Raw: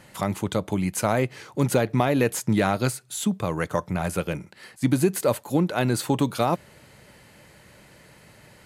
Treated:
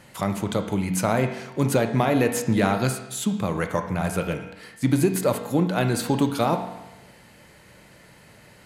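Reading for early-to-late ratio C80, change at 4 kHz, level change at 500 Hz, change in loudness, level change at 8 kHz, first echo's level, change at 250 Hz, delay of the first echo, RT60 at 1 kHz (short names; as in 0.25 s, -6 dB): 10.5 dB, +0.5 dB, +0.5 dB, +1.0 dB, 0.0 dB, none, +1.0 dB, none, 1.0 s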